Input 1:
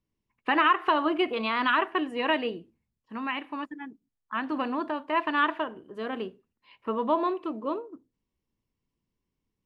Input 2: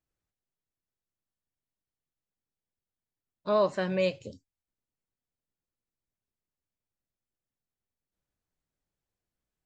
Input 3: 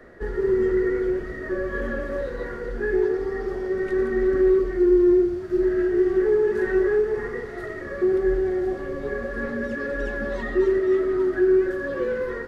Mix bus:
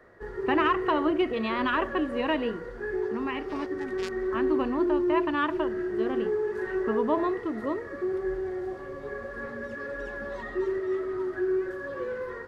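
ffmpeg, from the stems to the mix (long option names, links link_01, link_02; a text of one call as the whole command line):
ffmpeg -i stem1.wav -i stem2.wav -i stem3.wav -filter_complex "[0:a]lowshelf=frequency=460:gain=11.5,acontrast=33,volume=-10dB,asplit=2[link_01][link_02];[1:a]acrusher=bits=2:mix=0:aa=0.5,volume=2.5dB[link_03];[2:a]equalizer=frequency=100:width_type=o:width=0.67:gain=7,equalizer=frequency=250:width_type=o:width=0.67:gain=-4,equalizer=frequency=1000:width_type=o:width=0.67:gain=6,volume=-7.5dB[link_04];[link_02]apad=whole_len=425765[link_05];[link_03][link_05]sidechaincompress=threshold=-44dB:ratio=8:attack=16:release=372[link_06];[link_01][link_06][link_04]amix=inputs=3:normalize=0,lowshelf=frequency=110:gain=-8" out.wav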